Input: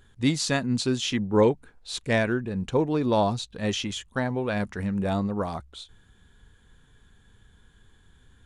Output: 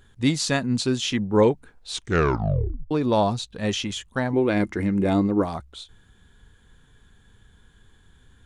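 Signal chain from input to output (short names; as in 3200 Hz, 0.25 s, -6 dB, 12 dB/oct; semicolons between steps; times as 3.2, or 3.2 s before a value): 1.91 tape stop 1.00 s; 4.33–5.45 small resonant body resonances 320/2100 Hz, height 15 dB; gain +2 dB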